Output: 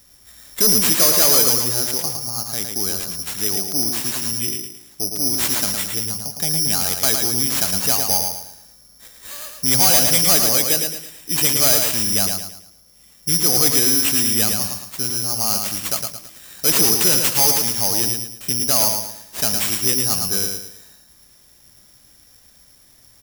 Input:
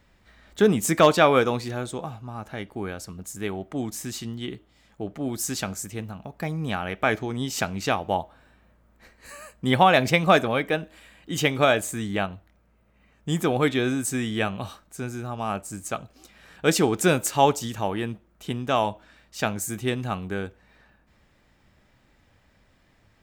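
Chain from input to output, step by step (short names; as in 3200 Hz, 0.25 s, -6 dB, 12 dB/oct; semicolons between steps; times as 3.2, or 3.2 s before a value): careless resampling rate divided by 8×, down none, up zero stuff; soft clip -2 dBFS, distortion -7 dB; on a send: feedback echo 0.11 s, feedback 37%, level -5 dB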